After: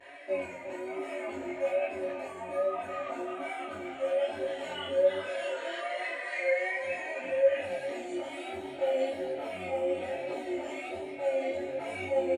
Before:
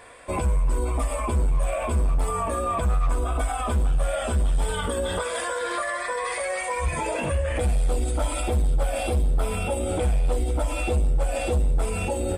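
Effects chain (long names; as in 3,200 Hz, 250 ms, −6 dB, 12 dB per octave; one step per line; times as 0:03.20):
high-pass filter 110 Hz 24 dB per octave
comb filter 3.2 ms, depth 99%
brickwall limiter −23.5 dBFS, peak gain reduction 11 dB
resonators tuned to a chord F#2 fifth, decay 0.38 s
pitch vibrato 1.2 Hz 65 cents
far-end echo of a speakerphone 360 ms, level −7 dB
convolution reverb RT60 0.85 s, pre-delay 3 ms, DRR 19.5 dB
micro pitch shift up and down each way 23 cents
level +2.5 dB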